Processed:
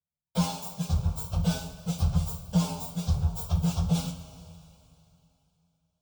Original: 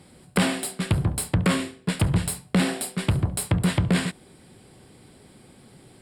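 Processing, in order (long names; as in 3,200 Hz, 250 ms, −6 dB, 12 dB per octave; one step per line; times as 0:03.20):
partials spread apart or drawn together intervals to 121%
noise gate −44 dBFS, range −42 dB
phaser with its sweep stopped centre 790 Hz, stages 4
coupled-rooms reverb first 0.23 s, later 3 s, from −18 dB, DRR 2 dB
level −2.5 dB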